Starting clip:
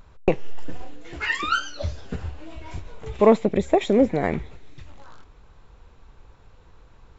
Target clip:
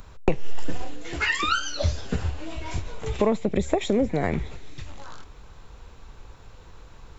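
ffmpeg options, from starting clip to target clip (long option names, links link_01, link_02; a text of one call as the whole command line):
ffmpeg -i in.wav -filter_complex "[0:a]highshelf=frequency=4300:gain=8.5,acrossover=split=130[link_01][link_02];[link_02]acompressor=threshold=-26dB:ratio=4[link_03];[link_01][link_03]amix=inputs=2:normalize=0,volume=4.5dB" out.wav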